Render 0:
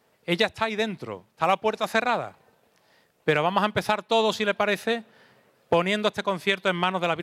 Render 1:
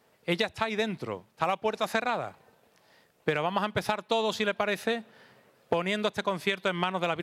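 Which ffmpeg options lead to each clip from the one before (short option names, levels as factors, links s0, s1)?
-af "acompressor=threshold=0.0708:ratio=6"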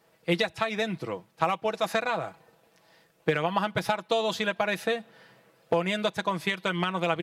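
-af "aecho=1:1:6.1:0.54"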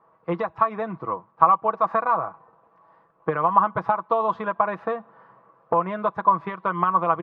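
-af "lowpass=f=1100:t=q:w=8.1,volume=0.891"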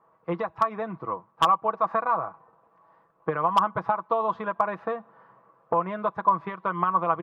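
-af "aeval=exprs='0.473*(abs(mod(val(0)/0.473+3,4)-2)-1)':c=same,volume=0.708"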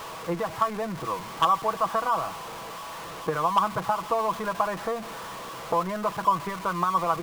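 -af "aeval=exprs='val(0)+0.5*0.0299*sgn(val(0))':c=same,volume=0.794"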